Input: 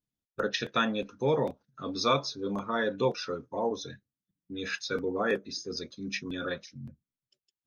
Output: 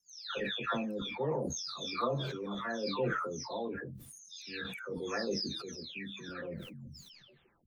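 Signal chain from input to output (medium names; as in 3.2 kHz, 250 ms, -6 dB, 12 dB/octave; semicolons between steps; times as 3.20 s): delay that grows with frequency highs early, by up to 570 ms; decay stretcher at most 32 dB/s; trim -6 dB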